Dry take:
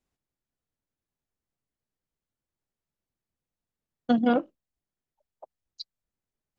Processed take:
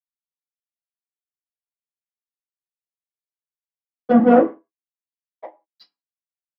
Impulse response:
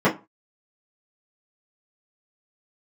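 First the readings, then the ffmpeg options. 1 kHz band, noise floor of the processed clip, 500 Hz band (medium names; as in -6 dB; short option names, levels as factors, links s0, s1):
+10.5 dB, under -85 dBFS, +13.0 dB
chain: -filter_complex "[0:a]equalizer=f=3500:w=4.7:g=-9.5,flanger=delay=6.2:depth=5.1:regen=-85:speed=1.9:shape=triangular,aeval=exprs='sgn(val(0))*max(abs(val(0))-0.00224,0)':c=same,asplit=2[s0][s1];[s1]highpass=f=720:p=1,volume=11.2,asoftclip=type=tanh:threshold=0.188[s2];[s0][s2]amix=inputs=2:normalize=0,lowpass=f=1900:p=1,volume=0.501[s3];[1:a]atrim=start_sample=2205[s4];[s3][s4]afir=irnorm=-1:irlink=0,volume=0.237"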